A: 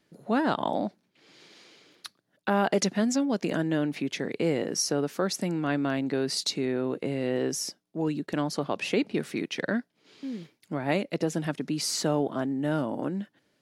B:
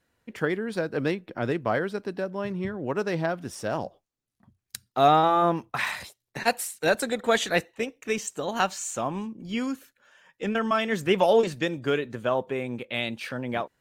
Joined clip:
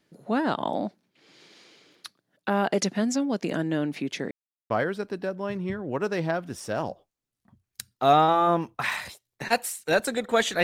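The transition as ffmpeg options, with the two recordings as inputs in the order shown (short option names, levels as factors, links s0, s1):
-filter_complex "[0:a]apad=whole_dur=10.63,atrim=end=10.63,asplit=2[s0][s1];[s0]atrim=end=4.31,asetpts=PTS-STARTPTS,afade=t=out:st=4.306:d=0.004:c=hsin[s2];[s1]atrim=start=4.31:end=4.7,asetpts=PTS-STARTPTS,volume=0[s3];[1:a]atrim=start=1.65:end=7.58,asetpts=PTS-STARTPTS,afade=t=in:d=0.004:c=hsin[s4];[s2][s3][s4]concat=n=3:v=0:a=1"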